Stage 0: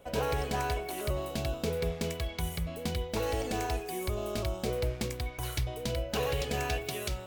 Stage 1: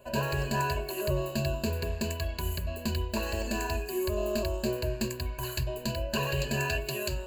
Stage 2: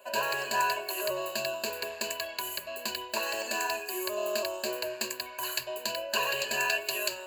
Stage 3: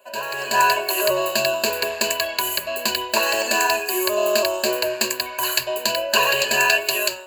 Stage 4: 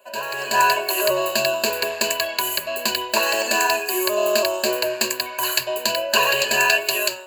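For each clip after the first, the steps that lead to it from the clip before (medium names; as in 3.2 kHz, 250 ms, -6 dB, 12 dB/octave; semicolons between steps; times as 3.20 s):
rippled EQ curve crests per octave 1.4, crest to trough 18 dB; trim -1.5 dB
high-pass 670 Hz 12 dB/octave; trim +4.5 dB
level rider gain up to 13 dB
high-pass 80 Hz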